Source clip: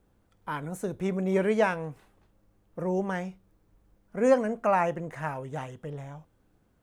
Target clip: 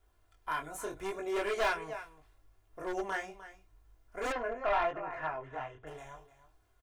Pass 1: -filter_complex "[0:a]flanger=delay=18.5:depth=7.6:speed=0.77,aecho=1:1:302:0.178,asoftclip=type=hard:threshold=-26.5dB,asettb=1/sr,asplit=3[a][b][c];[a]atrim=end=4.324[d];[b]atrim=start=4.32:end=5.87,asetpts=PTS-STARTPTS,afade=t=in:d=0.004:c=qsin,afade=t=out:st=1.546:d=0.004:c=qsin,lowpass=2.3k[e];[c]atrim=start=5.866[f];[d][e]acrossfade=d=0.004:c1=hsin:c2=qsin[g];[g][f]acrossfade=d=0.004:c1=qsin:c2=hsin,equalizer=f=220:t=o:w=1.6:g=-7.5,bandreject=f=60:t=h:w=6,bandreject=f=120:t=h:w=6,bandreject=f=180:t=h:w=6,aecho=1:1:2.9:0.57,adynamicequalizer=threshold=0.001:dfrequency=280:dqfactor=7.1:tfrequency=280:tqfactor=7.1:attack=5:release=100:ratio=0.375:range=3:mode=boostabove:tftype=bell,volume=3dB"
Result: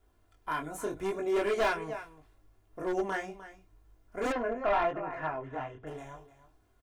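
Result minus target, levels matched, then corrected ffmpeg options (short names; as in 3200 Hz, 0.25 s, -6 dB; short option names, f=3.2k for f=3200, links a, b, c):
250 Hz band +4.0 dB
-filter_complex "[0:a]flanger=delay=18.5:depth=7.6:speed=0.77,aecho=1:1:302:0.178,asoftclip=type=hard:threshold=-26.5dB,asettb=1/sr,asplit=3[a][b][c];[a]atrim=end=4.324[d];[b]atrim=start=4.32:end=5.87,asetpts=PTS-STARTPTS,afade=t=in:d=0.004:c=qsin,afade=t=out:st=1.546:d=0.004:c=qsin,lowpass=2.3k[e];[c]atrim=start=5.866[f];[d][e]acrossfade=d=0.004:c1=hsin:c2=qsin[g];[g][f]acrossfade=d=0.004:c1=qsin:c2=hsin,equalizer=f=220:t=o:w=1.6:g=-18.5,bandreject=f=60:t=h:w=6,bandreject=f=120:t=h:w=6,bandreject=f=180:t=h:w=6,aecho=1:1:2.9:0.57,adynamicequalizer=threshold=0.001:dfrequency=280:dqfactor=7.1:tfrequency=280:tqfactor=7.1:attack=5:release=100:ratio=0.375:range=3:mode=boostabove:tftype=bell,volume=3dB"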